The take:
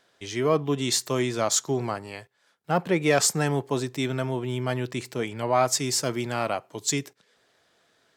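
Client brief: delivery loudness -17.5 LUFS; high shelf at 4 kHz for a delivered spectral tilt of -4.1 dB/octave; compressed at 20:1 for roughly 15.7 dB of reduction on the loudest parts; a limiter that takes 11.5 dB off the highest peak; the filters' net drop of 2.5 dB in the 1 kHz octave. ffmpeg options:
-af "equalizer=f=1000:t=o:g=-4,highshelf=f=4000:g=6.5,acompressor=threshold=0.0316:ratio=20,volume=14.1,alimiter=limit=0.422:level=0:latency=1"

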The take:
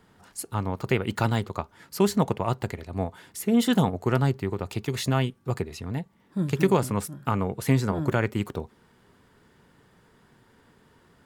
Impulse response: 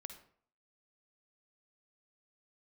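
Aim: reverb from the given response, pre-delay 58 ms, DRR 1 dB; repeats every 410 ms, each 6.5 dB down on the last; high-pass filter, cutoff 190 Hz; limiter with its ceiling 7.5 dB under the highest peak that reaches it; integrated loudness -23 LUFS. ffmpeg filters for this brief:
-filter_complex "[0:a]highpass=190,alimiter=limit=0.158:level=0:latency=1,aecho=1:1:410|820|1230|1640|2050|2460:0.473|0.222|0.105|0.0491|0.0231|0.0109,asplit=2[s0][s1];[1:a]atrim=start_sample=2205,adelay=58[s2];[s1][s2]afir=irnorm=-1:irlink=0,volume=1.5[s3];[s0][s3]amix=inputs=2:normalize=0,volume=1.78"

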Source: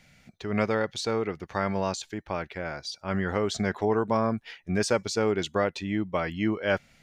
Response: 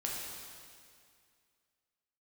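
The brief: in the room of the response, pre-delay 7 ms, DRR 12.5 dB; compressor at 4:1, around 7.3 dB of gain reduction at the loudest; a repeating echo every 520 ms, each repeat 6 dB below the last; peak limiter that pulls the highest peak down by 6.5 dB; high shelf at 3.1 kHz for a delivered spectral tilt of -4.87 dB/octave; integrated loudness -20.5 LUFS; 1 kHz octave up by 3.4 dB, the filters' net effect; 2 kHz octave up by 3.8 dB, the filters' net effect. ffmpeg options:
-filter_complex "[0:a]equalizer=f=1000:t=o:g=3.5,equalizer=f=2000:t=o:g=4.5,highshelf=f=3100:g=-3,acompressor=threshold=0.0447:ratio=4,alimiter=limit=0.1:level=0:latency=1,aecho=1:1:520|1040|1560|2080|2600|3120:0.501|0.251|0.125|0.0626|0.0313|0.0157,asplit=2[s0][s1];[1:a]atrim=start_sample=2205,adelay=7[s2];[s1][s2]afir=irnorm=-1:irlink=0,volume=0.168[s3];[s0][s3]amix=inputs=2:normalize=0,volume=3.76"

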